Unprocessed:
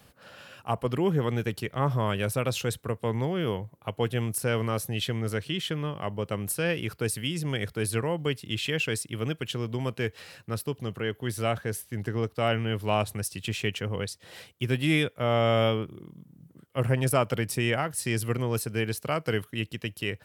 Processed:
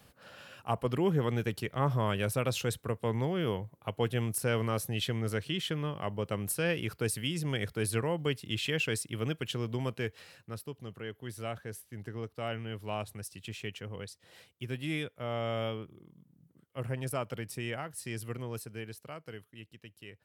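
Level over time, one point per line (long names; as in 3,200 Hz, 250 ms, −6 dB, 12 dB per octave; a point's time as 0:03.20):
0:09.79 −3 dB
0:10.66 −10.5 dB
0:18.49 −10.5 dB
0:19.38 −18 dB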